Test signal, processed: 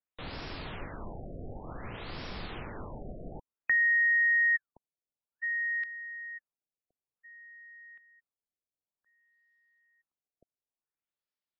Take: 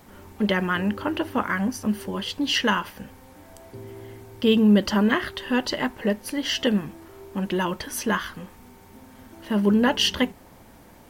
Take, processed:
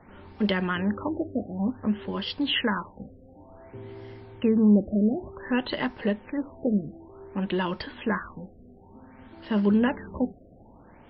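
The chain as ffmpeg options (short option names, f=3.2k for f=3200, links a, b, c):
-filter_complex "[0:a]acrossover=split=310|3000[a][b][c];[b]acompressor=threshold=-24dB:ratio=4[d];[a][d][c]amix=inputs=3:normalize=0,afftfilt=real='re*lt(b*sr/1024,720*pow(5700/720,0.5+0.5*sin(2*PI*0.55*pts/sr)))':imag='im*lt(b*sr/1024,720*pow(5700/720,0.5+0.5*sin(2*PI*0.55*pts/sr)))':win_size=1024:overlap=0.75,volume=-1.5dB"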